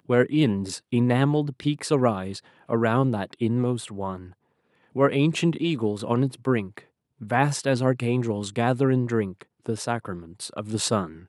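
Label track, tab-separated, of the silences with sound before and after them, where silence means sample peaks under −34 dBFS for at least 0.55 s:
4.260000	4.960000	silence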